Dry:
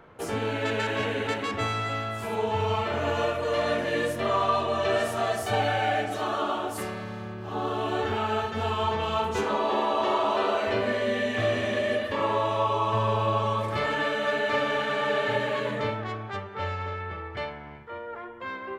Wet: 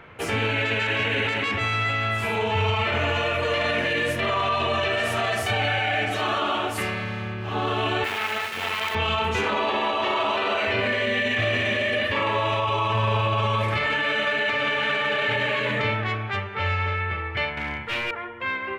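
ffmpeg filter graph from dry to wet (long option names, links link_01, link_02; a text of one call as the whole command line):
ffmpeg -i in.wav -filter_complex "[0:a]asettb=1/sr,asplit=3[link_01][link_02][link_03];[link_01]atrim=end=8.044[link_04];[link_02]atrim=start=8.04:end=8.95,asetpts=PTS-STARTPTS,afade=type=in:duration=0.004:curve=qsin,afade=type=out:start_time=0.906:duration=0.004:curve=qsin,acrusher=bits=4:dc=4:mix=0:aa=0.000001,highpass=frequency=490:poles=1[link_05];[link_03]atrim=start=8.946[link_06];[link_04][link_05]acrossfade=duration=0.004:curve1=hsin:curve2=qsin[link_07];[link_07][link_06]acrossfade=duration=0.004:curve1=qsin:curve2=hsin,asettb=1/sr,asplit=3[link_08][link_09][link_10];[link_08]atrim=end=17.574[link_11];[link_09]atrim=start=17.57:end=18.11,asetpts=PTS-STARTPTS,afade=type=in:duration=0.004:curve=qsin,afade=type=out:start_time=0.536:duration=0.004:curve=qsin,acontrast=51,aeval=exprs='0.0282*(abs(mod(val(0)/0.0282+3,4)-2)-1)':channel_layout=same,asplit=2[link_12][link_13];[link_13]adelay=31,volume=-6.5dB[link_14];[link_12][link_14]amix=inputs=2:normalize=0,atrim=end_sample=23814[link_15];[link_10]atrim=start=18.106[link_16];[link_11][link_15]acrossfade=duration=0.004:curve1=hsin:curve2=qsin[link_17];[link_17][link_16]acrossfade=duration=0.004:curve1=qsin:curve2=hsin,equalizer=frequency=2400:width_type=o:width=1.2:gain=13,alimiter=limit=-18dB:level=0:latency=1:release=16,equalizer=frequency=93:width_type=o:width=1.4:gain=6.5,volume=2dB" out.wav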